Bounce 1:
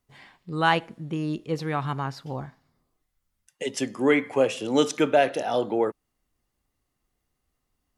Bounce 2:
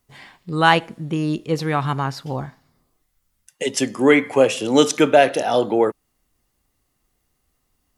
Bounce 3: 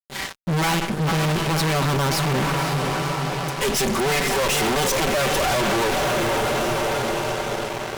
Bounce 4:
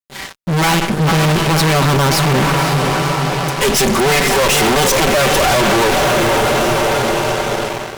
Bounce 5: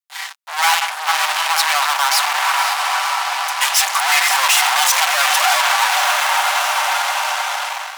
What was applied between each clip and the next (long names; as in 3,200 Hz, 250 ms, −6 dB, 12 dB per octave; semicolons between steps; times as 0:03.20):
high-shelf EQ 5,800 Hz +5 dB; level +6.5 dB
lower of the sound and its delayed copy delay 5.2 ms; feedback delay with all-pass diffusion 525 ms, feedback 60%, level −13 dB; fuzz pedal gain 42 dB, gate −46 dBFS; level −6.5 dB
automatic gain control gain up to 8 dB
Butterworth high-pass 750 Hz 48 dB per octave; level +1 dB